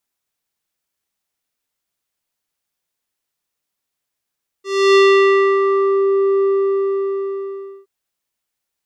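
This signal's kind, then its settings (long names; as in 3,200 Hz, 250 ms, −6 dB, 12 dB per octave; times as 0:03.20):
subtractive voice square G4 12 dB per octave, low-pass 780 Hz, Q 1.3, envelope 3 octaves, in 1.42 s, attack 309 ms, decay 0.64 s, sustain −6 dB, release 1.43 s, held 1.79 s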